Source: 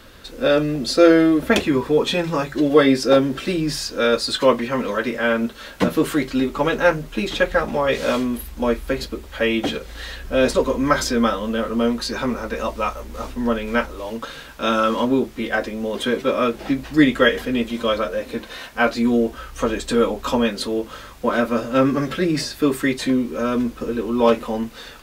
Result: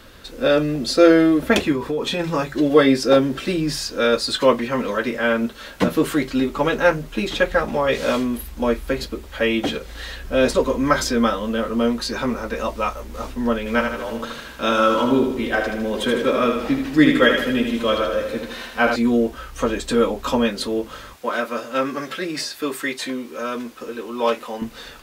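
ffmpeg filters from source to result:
-filter_complex "[0:a]asplit=3[s0][s1][s2];[s0]afade=t=out:st=1.72:d=0.02[s3];[s1]acompressor=threshold=0.112:ratio=6:attack=3.2:release=140:knee=1:detection=peak,afade=t=in:st=1.72:d=0.02,afade=t=out:st=2.19:d=0.02[s4];[s2]afade=t=in:st=2.19:d=0.02[s5];[s3][s4][s5]amix=inputs=3:normalize=0,asettb=1/sr,asplit=3[s6][s7][s8];[s6]atrim=end=13.584[s9];[s7]atrim=start=13.58:end=18.96,asetpts=PTS-STARTPTS,afade=t=in:d=0.004:c=qsin,afade=t=out:st=5.376:d=0.004:c=qsin,aecho=1:1:78|156|234|312|390|468|546:0.531|0.281|0.149|0.079|0.0419|0.0222|0.0118,atrim=end_sample=237258[s10];[s8]atrim=start=18.956[s11];[s9][s10]acrossfade=d=0.004:c1=hsin:c2=qsin[s12];[s12][s11]acrossfade=d=0.004:c1=qsin:c2=hsin,asettb=1/sr,asplit=3[s13][s14][s15];[s13]atrim=end=21.164[s16];[s14]atrim=start=21.16:end=24.62,asetpts=PTS-STARTPTS,afade=t=in:d=0.004:c=qsin,afade=t=out:st=3.456:d=0.004:c=qsin,highpass=f=710:p=1[s17];[s15]atrim=start=24.616[s18];[s16][s17]acrossfade=d=0.004:c1=hsin:c2=qsin[s19];[s19][s18]acrossfade=d=0.004:c1=qsin:c2=hsin"

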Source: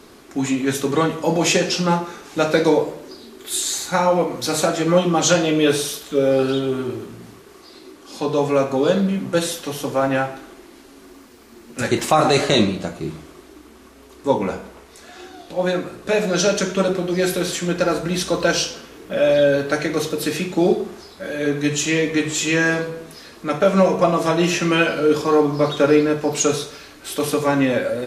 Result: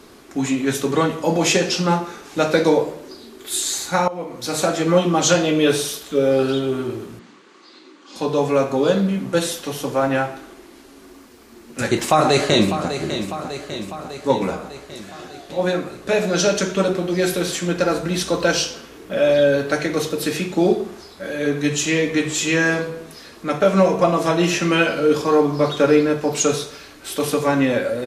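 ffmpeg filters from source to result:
-filter_complex "[0:a]asettb=1/sr,asplit=3[s0][s1][s2];[s0]atrim=end=7.194[s3];[s1]atrim=start=7.19:end=8.16,asetpts=PTS-STARTPTS,afade=t=in:d=0.004:c=qsin,afade=t=out:st=0.966:d=0.004:c=qsin,highpass=f=210:w=0.5412,highpass=f=210:w=1.3066,equalizer=f=250:t=q:w=4:g=-3,equalizer=f=410:t=q:w=4:g=-9,equalizer=f=680:t=q:w=4:g=-9,equalizer=f=5400:t=q:w=4:g=-6,lowpass=f=6500:w=0.5412,lowpass=f=6500:w=1.3066[s4];[s2]atrim=start=8.156[s5];[s3][s4]acrossfade=d=0.004:c1=hsin:c2=qsin[s6];[s6][s5]acrossfade=d=0.004:c1=qsin:c2=hsin,asplit=2[s7][s8];[s8]afade=t=in:st=11.88:d=0.01,afade=t=out:st=12.94:d=0.01,aecho=0:1:600|1200|1800|2400|3000|3600|4200|4800|5400:0.316228|0.205548|0.133606|0.0868441|0.0564486|0.0366916|0.0238495|0.0155022|0.0100764[s9];[s7][s9]amix=inputs=2:normalize=0,asplit=2[s10][s11];[s10]atrim=end=4.08,asetpts=PTS-STARTPTS,afade=t=out:st=4.076:d=0.004:c=hsin:silence=0.141254[s12];[s11]atrim=start=4.08,asetpts=PTS-STARTPTS,afade=t=in:d=0.63:silence=0.141254[s13];[s12][s13]concat=n=2:v=0:a=1"

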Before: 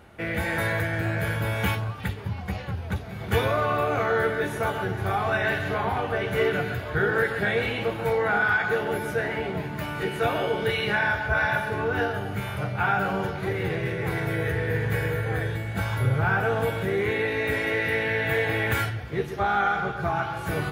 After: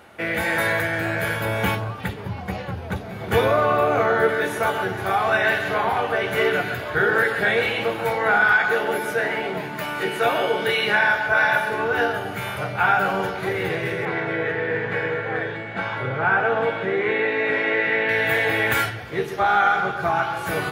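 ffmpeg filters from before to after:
-filter_complex "[0:a]asettb=1/sr,asplit=3[s0][s1][s2];[s0]atrim=end=1.454[s3];[s1]atrim=start=1.45:end=4.29,asetpts=PTS-STARTPTS,afade=t=in:d=0.004:c=qsin,afade=t=out:st=2.836:d=0.004:c=qsin,tiltshelf=f=940:g=4[s4];[s2]atrim=start=4.286[s5];[s3][s4]acrossfade=d=0.004:c1=hsin:c2=qsin[s6];[s6][s5]acrossfade=d=0.004:c1=qsin:c2=hsin,asettb=1/sr,asplit=3[s7][s8][s9];[s7]atrim=end=8.524[s10];[s8]atrim=start=8.52:end=11.84,asetpts=PTS-STARTPTS,afade=t=in:d=0.004:c=qsin,afade=t=out:st=3.316:d=0.004:c=qsin,equalizer=f=77:w=1.5:g=-9.5[s11];[s9]atrim=start=11.836[s12];[s10][s11]acrossfade=d=0.004:c1=hsin:c2=qsin[s13];[s13][s12]acrossfade=d=0.004:c1=qsin:c2=hsin,asettb=1/sr,asplit=3[s14][s15][s16];[s14]atrim=end=14.054[s17];[s15]atrim=start=14.05:end=18.09,asetpts=PTS-STARTPTS,afade=t=in:d=0.004:c=qsin,afade=t=out:st=4.036:d=0.004:c=qsin,highpass=150,lowpass=2900[s18];[s16]atrim=start=18.086[s19];[s17][s18]acrossfade=d=0.004:c1=hsin:c2=qsin[s20];[s20][s19]acrossfade=d=0.004:c1=qsin:c2=hsin,highpass=f=300:p=1,bandreject=f=50:t=h:w=6,bandreject=f=100:t=h:w=6,bandreject=f=150:t=h:w=6,bandreject=f=200:t=h:w=6,bandreject=f=250:t=h:w=6,bandreject=f=300:t=h:w=6,bandreject=f=350:t=h:w=6,bandreject=f=400:t=h:w=6,bandreject=f=450:t=h:w=6,volume=2"

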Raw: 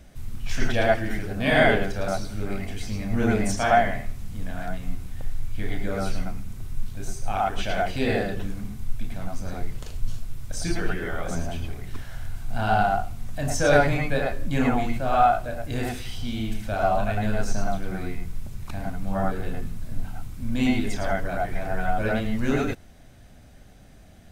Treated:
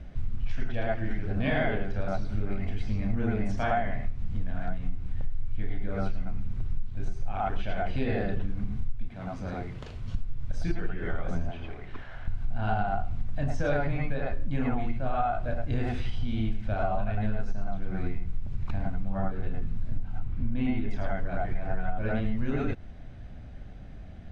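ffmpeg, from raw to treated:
-filter_complex "[0:a]asettb=1/sr,asplit=3[s0][s1][s2];[s0]atrim=end=9.084[s3];[s1]atrim=start=9.08:end=10.15,asetpts=PTS-STARTPTS,afade=t=in:d=0.004:c=qsin,afade=t=out:st=1.066:d=0.004:c=qsin,highpass=f=220:p=1[s4];[s2]atrim=start=10.146[s5];[s3][s4]acrossfade=d=0.004:c1=hsin:c2=qsin[s6];[s6][s5]acrossfade=d=0.004:c1=qsin:c2=hsin,asettb=1/sr,asplit=3[s7][s8][s9];[s7]atrim=end=11.514[s10];[s8]atrim=start=11.51:end=12.28,asetpts=PTS-STARTPTS,afade=t=in:d=0.004:c=qsin,afade=t=out:st=0.766:d=0.004:c=qsin,bass=f=250:g=-15,treble=f=4000:g=-8[s11];[s9]atrim=start=12.276[s12];[s10][s11]acrossfade=d=0.004:c1=hsin:c2=qsin[s13];[s13][s12]acrossfade=d=0.004:c1=qsin:c2=hsin,asettb=1/sr,asplit=3[s14][s15][s16];[s14]atrim=end=20.204[s17];[s15]atrim=start=20.2:end=20.91,asetpts=PTS-STARTPTS,afade=t=in:d=0.004:c=qsin,afade=t=out:st=0.706:d=0.004:c=qsin,bass=f=250:g=0,treble=f=4000:g=-11[s18];[s16]atrim=start=20.906[s19];[s17][s18]acrossfade=d=0.004:c1=hsin:c2=qsin[s20];[s20][s19]acrossfade=d=0.004:c1=qsin:c2=hsin,lowpass=3100,lowshelf=f=180:g=8.5,acompressor=threshold=0.0708:ratio=6"

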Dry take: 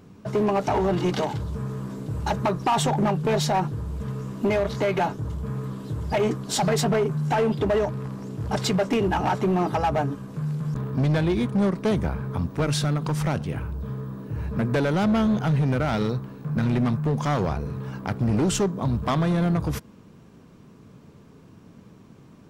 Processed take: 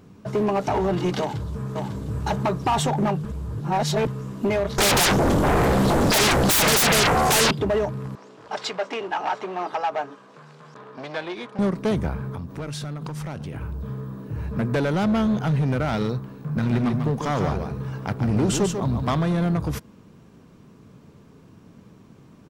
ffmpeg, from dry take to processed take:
-filter_complex "[0:a]asplit=2[s0][s1];[s1]afade=t=in:st=1.2:d=0.01,afade=t=out:st=2.24:d=0.01,aecho=0:1:550|1100|1650|2200:0.595662|0.178699|0.0536096|0.0160829[s2];[s0][s2]amix=inputs=2:normalize=0,asettb=1/sr,asplit=3[s3][s4][s5];[s3]atrim=end=4.784[s6];[s4]atrim=start=4.78:end=7.51,asetpts=PTS-STARTPTS,afade=t=in:d=0.004:c=qsin,afade=t=out:st=2.726:d=0.004:c=qsin,aeval=exprs='0.168*sin(PI/2*8.91*val(0)/0.168)':c=same[s7];[s5]atrim=start=7.506[s8];[s6][s7]acrossfade=d=0.004:c1=hsin:c2=qsin[s9];[s9][s8]acrossfade=d=0.004:c1=qsin:c2=hsin,asettb=1/sr,asplit=3[s10][s11][s12];[s10]atrim=end=8.154[s13];[s11]atrim=start=8.15:end=11.59,asetpts=PTS-STARTPTS,afade=t=in:d=0.004:c=qsin,afade=t=out:st=3.436:d=0.004:c=qsin,highpass=570,lowpass=5300[s14];[s12]atrim=start=11.586[s15];[s13][s14]acrossfade=d=0.004:c1=hsin:c2=qsin[s16];[s16][s15]acrossfade=d=0.004:c1=qsin:c2=hsin,asettb=1/sr,asplit=3[s17][s18][s19];[s17]atrim=end=12.294[s20];[s18]atrim=start=12.29:end=13.62,asetpts=PTS-STARTPTS,afade=t=in:d=0.004:c=qsin,afade=t=out:st=1.326:d=0.004:c=qsin,acompressor=threshold=0.0398:ratio=10:attack=3.2:release=140:knee=1:detection=peak[s21];[s19]atrim=start=13.616[s22];[s20][s21]acrossfade=d=0.004:c1=hsin:c2=qsin[s23];[s23][s22]acrossfade=d=0.004:c1=qsin:c2=hsin,asettb=1/sr,asplit=3[s24][s25][s26];[s24]atrim=end=16.444[s27];[s25]atrim=start=16.44:end=19.17,asetpts=PTS-STARTPTS,afade=t=in:d=0.004:c=qsin,afade=t=out:st=2.726:d=0.004:c=qsin,aecho=1:1:144:0.501,atrim=end_sample=120393[s28];[s26]atrim=start=19.166[s29];[s27][s28]acrossfade=d=0.004:c1=hsin:c2=qsin[s30];[s30][s29]acrossfade=d=0.004:c1=qsin:c2=hsin,asplit=3[s31][s32][s33];[s31]atrim=end=3.252[s34];[s32]atrim=start=3.248:end=4.072,asetpts=PTS-STARTPTS,areverse[s35];[s33]atrim=start=4.068[s36];[s34][s35]acrossfade=d=0.004:c1=hsin:c2=hsin[s37];[s37][s36]acrossfade=d=0.004:c1=hsin:c2=hsin"

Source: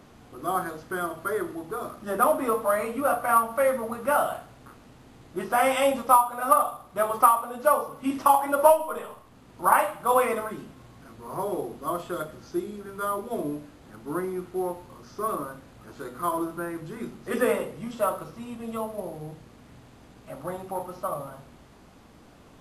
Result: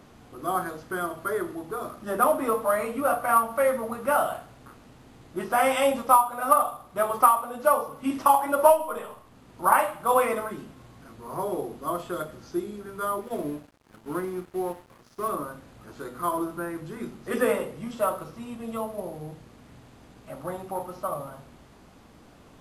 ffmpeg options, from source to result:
-filter_complex "[0:a]asettb=1/sr,asplit=3[s0][s1][s2];[s0]atrim=end=13.214[s3];[s1]atrim=start=13.21:end=15.29,asetpts=PTS-STARTPTS,afade=t=in:d=0.004:c=qsin,afade=t=out:st=2.076:d=0.004:c=qsin,aeval=exprs='sgn(val(0))*max(abs(val(0))-0.00422,0)':c=same[s4];[s2]atrim=start=15.286[s5];[s3][s4]acrossfade=d=0.004:c1=hsin:c2=qsin[s6];[s6][s5]acrossfade=d=0.004:c1=qsin:c2=hsin"

